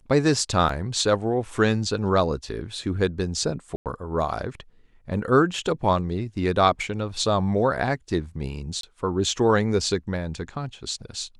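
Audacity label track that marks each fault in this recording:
0.690000	0.690000	gap 3.9 ms
3.760000	3.860000	gap 98 ms
8.810000	8.830000	gap 23 ms

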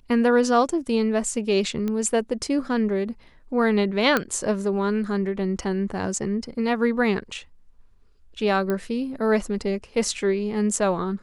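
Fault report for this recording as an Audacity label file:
1.880000	1.880000	pop -16 dBFS
4.170000	4.170000	pop -7 dBFS
8.700000	8.700000	pop -14 dBFS

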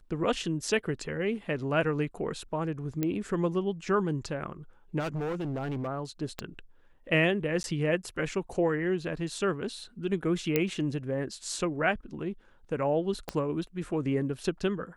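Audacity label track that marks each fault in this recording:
3.030000	3.030000	pop -16 dBFS
4.990000	5.880000	clipped -29.5 dBFS
6.390000	6.390000	pop -18 dBFS
7.630000	7.640000	gap 11 ms
10.560000	10.560000	pop -11 dBFS
13.290000	13.290000	pop -17 dBFS

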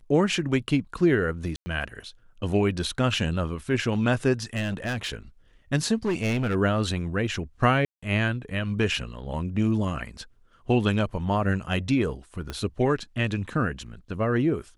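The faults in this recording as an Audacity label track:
1.560000	1.660000	gap 0.1 s
4.560000	5.150000	clipped -24.5 dBFS
6.050000	6.560000	clipped -21 dBFS
7.850000	8.030000	gap 0.175 s
12.500000	12.500000	pop -18 dBFS

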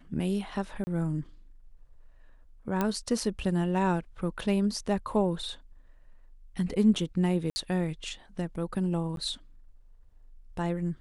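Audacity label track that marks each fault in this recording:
0.840000	0.870000	gap 30 ms
2.810000	2.810000	pop -14 dBFS
7.500000	7.560000	gap 60 ms
9.160000	9.170000	gap 12 ms

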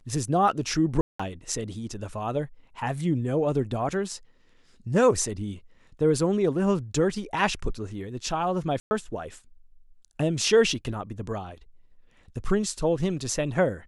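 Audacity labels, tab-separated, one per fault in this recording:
1.010000	1.200000	gap 0.185 s
8.800000	8.910000	gap 0.11 s

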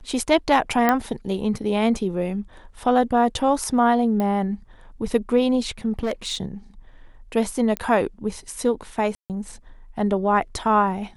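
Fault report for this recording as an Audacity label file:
0.890000	0.890000	pop -6 dBFS
4.200000	4.200000	pop -14 dBFS
5.990000	6.370000	clipped -20 dBFS
7.770000	7.770000	pop -11 dBFS
9.150000	9.300000	gap 0.148 s

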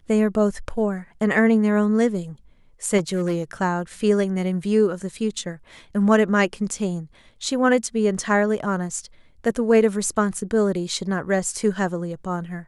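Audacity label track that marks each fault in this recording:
2.970000	3.420000	clipped -18.5 dBFS

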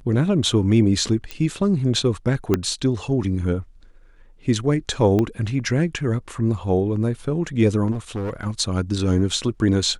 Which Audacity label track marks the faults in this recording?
1.310000	1.310000	pop -14 dBFS
2.540000	2.540000	pop -6 dBFS
5.190000	5.190000	pop -11 dBFS
7.910000	8.470000	clipped -23 dBFS

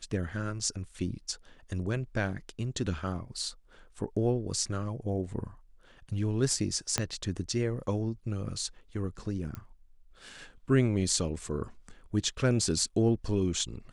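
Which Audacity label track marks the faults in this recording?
6.980000	6.980000	pop -11 dBFS
9.550000	9.550000	pop -24 dBFS

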